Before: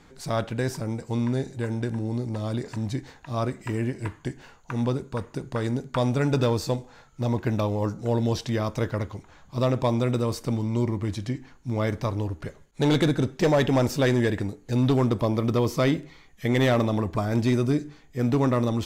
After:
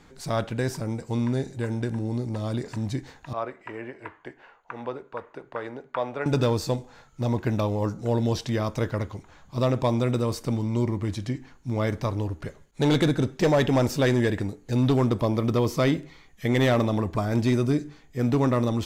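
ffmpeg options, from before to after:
-filter_complex "[0:a]asettb=1/sr,asplit=3[a][b][c];[a]atrim=end=3.334[d];[b]atrim=start=3.33:end=6.26,asetpts=PTS-STARTPTS,afade=t=in:d=0.004:c=qsin,afade=t=out:st=2.926:d=0.004:c=qsin,acrossover=split=400 2800:gain=0.1 1 0.0708[e][f][g];[e][f][g]amix=inputs=3:normalize=0[h];[c]atrim=start=6.256[i];[d][h]acrossfade=d=0.004:c1=hsin:c2=qsin[j];[j][i]acrossfade=d=0.004:c1=qsin:c2=hsin"

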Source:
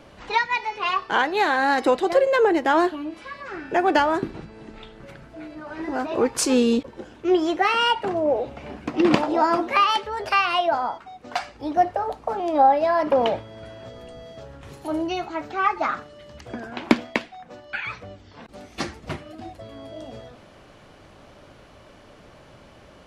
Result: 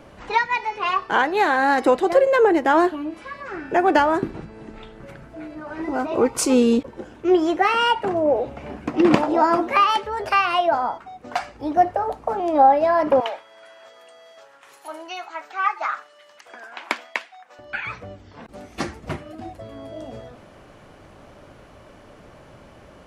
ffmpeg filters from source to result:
-filter_complex "[0:a]asettb=1/sr,asplit=3[a][b][c];[a]atrim=end=5.834[d];[b]atrim=start=5.83:end=6.62,asetpts=PTS-STARTPTS,afade=t=in:d=0.004:c=qsin,afade=t=out:st=0.786:d=0.004:c=qsin,asuperstop=centerf=1700:order=12:qfactor=7.6[e];[c]atrim=start=6.616[f];[d][e]acrossfade=d=0.004:c1=hsin:c2=qsin[g];[g][f]acrossfade=d=0.004:c1=qsin:c2=hsin,asettb=1/sr,asplit=3[h][i][j];[h]atrim=end=13.204[k];[i]atrim=start=13.2:end=17.59,asetpts=PTS-STARTPTS,afade=t=in:d=0.004:c=qsin,afade=t=out:st=4.386:d=0.004:c=qsin,highpass=1k[l];[j]atrim=start=17.586[m];[k][l]acrossfade=d=0.004:c1=hsin:c2=qsin[n];[n][m]acrossfade=d=0.004:c1=qsin:c2=hsin,equalizer=f=4k:w=0.97:g=-5.5,volume=2.5dB"

